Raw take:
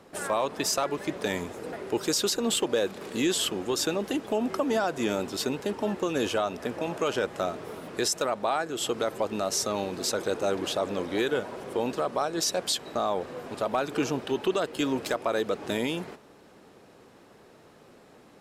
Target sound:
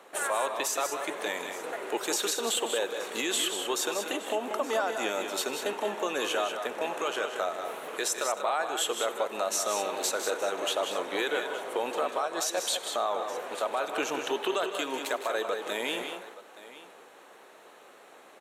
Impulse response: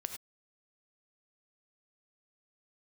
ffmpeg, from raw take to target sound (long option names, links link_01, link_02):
-filter_complex "[0:a]highpass=570,equalizer=frequency=5000:width=5.1:gain=-12.5,alimiter=limit=-23.5dB:level=0:latency=1:release=305,aecho=1:1:157|189|871:0.251|0.422|0.133,asplit=2[link_01][link_02];[1:a]atrim=start_sample=2205[link_03];[link_02][link_03]afir=irnorm=-1:irlink=0,volume=-8dB[link_04];[link_01][link_04]amix=inputs=2:normalize=0,volume=2dB"